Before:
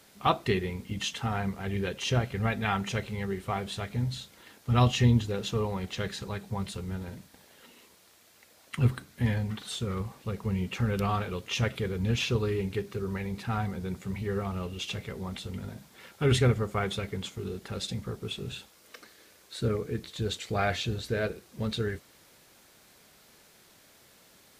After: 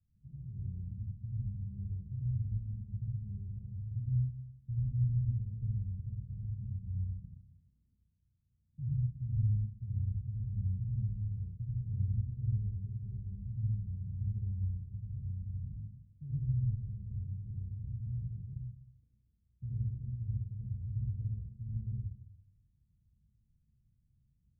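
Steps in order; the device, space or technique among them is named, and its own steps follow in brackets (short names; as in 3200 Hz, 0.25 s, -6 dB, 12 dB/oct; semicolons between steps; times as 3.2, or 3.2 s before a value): club heard from the street (limiter -23 dBFS, peak gain reduction 11.5 dB; LPF 120 Hz 24 dB/oct; reverb RT60 0.70 s, pre-delay 70 ms, DRR -6.5 dB); gain -4 dB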